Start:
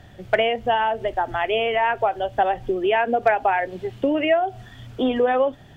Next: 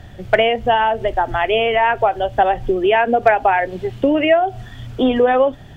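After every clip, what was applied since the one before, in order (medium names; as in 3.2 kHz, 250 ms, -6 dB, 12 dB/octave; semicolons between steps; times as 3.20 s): bass shelf 86 Hz +8 dB; trim +5 dB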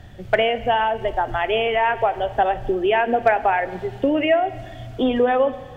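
reverberation RT60 1.8 s, pre-delay 29 ms, DRR 14.5 dB; trim -4 dB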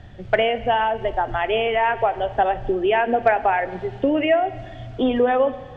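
distance through air 87 m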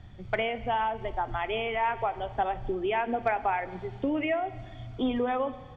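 comb 0.9 ms, depth 39%; trim -8 dB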